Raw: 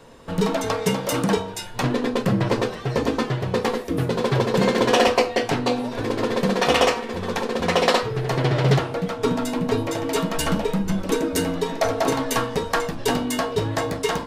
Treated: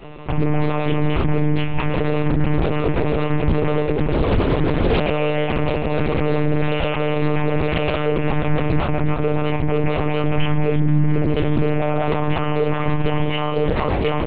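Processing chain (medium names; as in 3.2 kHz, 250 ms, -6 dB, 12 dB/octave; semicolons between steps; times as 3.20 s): 4.17–5.08 s: octave divider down 1 oct, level +1 dB; graphic EQ with 31 bands 100 Hz -4 dB, 160 Hz +5 dB, 1.6 kHz -3 dB, 2.5 kHz +9 dB; in parallel at -1.5 dB: compressor with a negative ratio -26 dBFS, ratio -1; on the sum: saturation -14 dBFS, distortion -14 dB; distance through air 170 m; doubling 22 ms -3.5 dB; echo whose repeats swap between lows and highs 166 ms, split 890 Hz, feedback 52%, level -6 dB; on a send at -6.5 dB: reverberation RT60 0.45 s, pre-delay 5 ms; on the sum: monotone LPC vocoder at 8 kHz 150 Hz; loudness maximiser +7 dB; loudspeaker Doppler distortion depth 0.48 ms; trim -7 dB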